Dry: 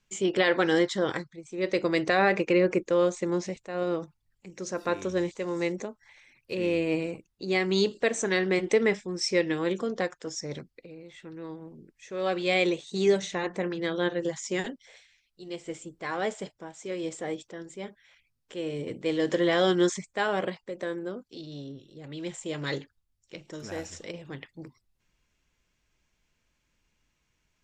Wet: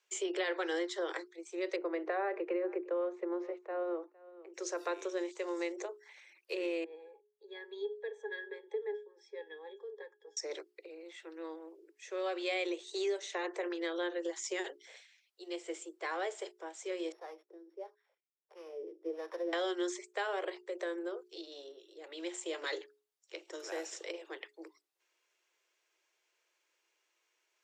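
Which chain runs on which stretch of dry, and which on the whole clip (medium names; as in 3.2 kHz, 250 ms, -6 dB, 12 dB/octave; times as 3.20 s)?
1.76–4.54 s: low-pass 1.4 kHz + delay 459 ms -23 dB
6.84–10.37 s: high-pass 310 Hz + pitch-class resonator G#, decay 0.13 s
17.12–19.53 s: sorted samples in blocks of 8 samples + wah-wah 1.5 Hz 210–1100 Hz, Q 2.8
whole clip: steep high-pass 330 Hz 96 dB/octave; hum notches 60/120/180/240/300/360/420 Hz; compression 3:1, threshold -33 dBFS; trim -1.5 dB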